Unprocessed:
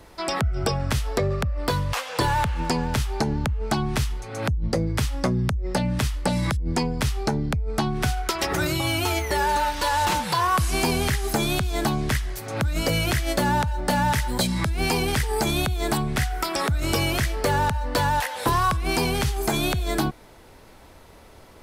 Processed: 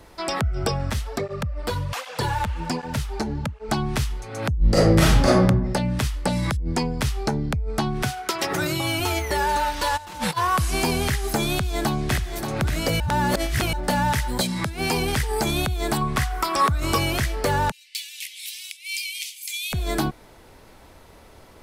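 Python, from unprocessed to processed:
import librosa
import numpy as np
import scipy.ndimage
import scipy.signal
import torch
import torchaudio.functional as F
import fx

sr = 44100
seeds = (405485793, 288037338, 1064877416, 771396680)

y = fx.flanger_cancel(x, sr, hz=1.3, depth_ms=7.6, at=(0.9, 3.69))
y = fx.reverb_throw(y, sr, start_s=4.58, length_s=0.84, rt60_s=0.81, drr_db=-9.0)
y = fx.highpass(y, sr, hz=100.0, slope=24, at=(8.03, 9.0))
y = fx.over_compress(y, sr, threshold_db=-30.0, ratio=-0.5, at=(9.96, 10.36), fade=0.02)
y = fx.echo_throw(y, sr, start_s=11.51, length_s=0.87, ms=580, feedback_pct=30, wet_db=-7.0)
y = fx.highpass(y, sr, hz=fx.line((14.41, 170.0), (14.94, 72.0)), slope=12, at=(14.41, 14.94), fade=0.02)
y = fx.peak_eq(y, sr, hz=1100.0, db=13.5, octaves=0.23, at=(16.01, 16.98))
y = fx.cheby1_highpass(y, sr, hz=2200.0, order=6, at=(17.7, 19.72), fade=0.02)
y = fx.edit(y, sr, fx.reverse_span(start_s=13.0, length_s=0.73), tone=tone)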